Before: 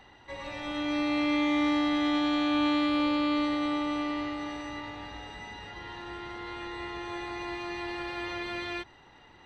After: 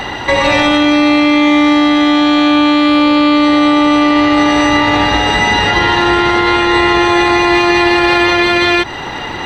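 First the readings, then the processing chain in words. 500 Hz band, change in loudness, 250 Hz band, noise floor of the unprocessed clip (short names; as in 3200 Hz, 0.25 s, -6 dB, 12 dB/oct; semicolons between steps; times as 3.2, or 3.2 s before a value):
+22.5 dB, +20.0 dB, +19.0 dB, -56 dBFS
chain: low shelf 87 Hz -6.5 dB; in parallel at +3 dB: compressor, threshold -42 dBFS, peak gain reduction 17 dB; on the sum: maximiser +27 dB; gain -1 dB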